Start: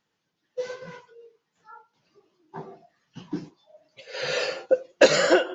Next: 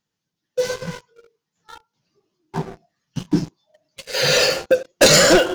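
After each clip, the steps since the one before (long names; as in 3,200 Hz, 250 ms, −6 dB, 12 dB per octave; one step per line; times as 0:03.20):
leveller curve on the samples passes 3
bass and treble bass +9 dB, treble +9 dB
level −1.5 dB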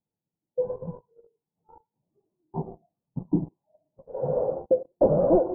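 Butterworth low-pass 920 Hz 48 dB per octave
level −5.5 dB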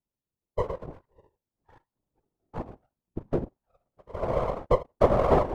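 half-wave rectification
random phases in short frames
dynamic equaliser 680 Hz, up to +4 dB, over −38 dBFS, Q 0.79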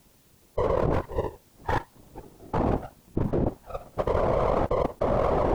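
envelope flattener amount 100%
level −8 dB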